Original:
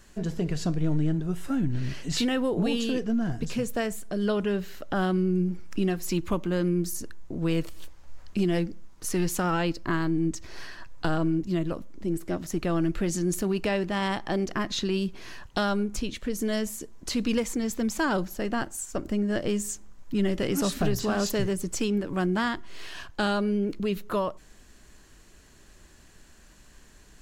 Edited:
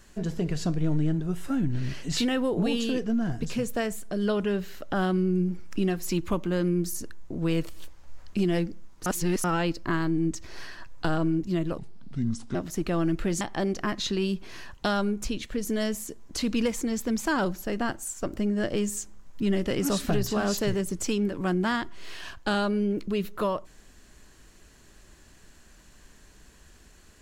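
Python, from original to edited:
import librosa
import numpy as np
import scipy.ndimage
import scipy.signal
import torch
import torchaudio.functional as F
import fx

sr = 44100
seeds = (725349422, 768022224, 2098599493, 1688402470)

y = fx.edit(x, sr, fx.reverse_span(start_s=9.06, length_s=0.38),
    fx.speed_span(start_s=11.78, length_s=0.53, speed=0.69),
    fx.cut(start_s=13.17, length_s=0.96), tone=tone)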